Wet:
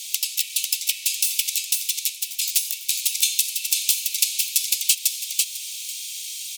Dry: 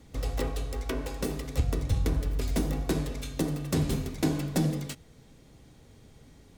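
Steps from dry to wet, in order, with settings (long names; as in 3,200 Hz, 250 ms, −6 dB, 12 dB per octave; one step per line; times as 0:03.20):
downward compressor 4 to 1, threshold −43 dBFS, peak gain reduction 18.5 dB
Butterworth high-pass 2,400 Hz 72 dB per octave
high-shelf EQ 5,300 Hz +11 dB
repeating echo 497 ms, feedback 18%, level −3.5 dB
boost into a limiter +28 dB
level −1 dB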